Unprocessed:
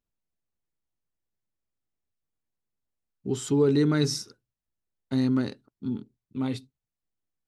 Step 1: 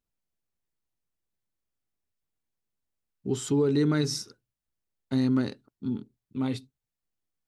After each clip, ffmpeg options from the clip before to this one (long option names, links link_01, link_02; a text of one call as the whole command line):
ffmpeg -i in.wav -af "alimiter=limit=-16dB:level=0:latency=1:release=161" out.wav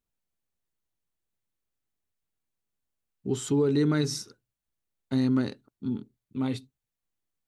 ffmpeg -i in.wav -af "equalizer=frequency=5100:width=7.3:gain=-4" out.wav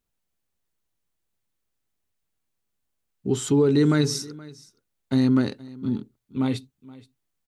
ffmpeg -i in.wav -af "aecho=1:1:473:0.0891,volume=5dB" out.wav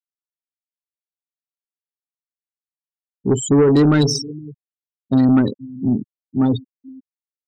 ffmpeg -i in.wav -af "afftfilt=real='re*gte(hypot(re,im),0.0562)':imag='im*gte(hypot(re,im),0.0562)':win_size=1024:overlap=0.75,aeval=exprs='0.299*(cos(1*acos(clip(val(0)/0.299,-1,1)))-cos(1*PI/2))+0.0299*(cos(5*acos(clip(val(0)/0.299,-1,1)))-cos(5*PI/2))':channel_layout=same,volume=5.5dB" out.wav